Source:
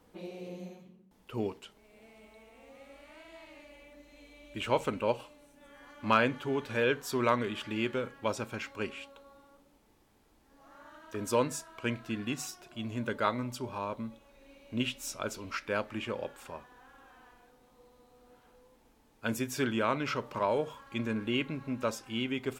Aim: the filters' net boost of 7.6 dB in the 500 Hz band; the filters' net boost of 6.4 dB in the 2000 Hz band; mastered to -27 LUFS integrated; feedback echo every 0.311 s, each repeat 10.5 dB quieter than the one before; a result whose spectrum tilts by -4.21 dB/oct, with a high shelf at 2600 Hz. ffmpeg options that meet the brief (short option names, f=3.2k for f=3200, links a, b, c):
-af "equalizer=f=500:t=o:g=8.5,equalizer=f=2k:t=o:g=6.5,highshelf=f=2.6k:g=3.5,aecho=1:1:311|622|933:0.299|0.0896|0.0269,volume=1dB"